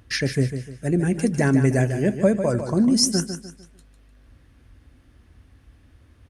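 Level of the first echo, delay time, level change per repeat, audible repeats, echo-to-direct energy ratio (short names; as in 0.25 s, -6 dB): -9.0 dB, 0.15 s, -9.0 dB, 3, -8.5 dB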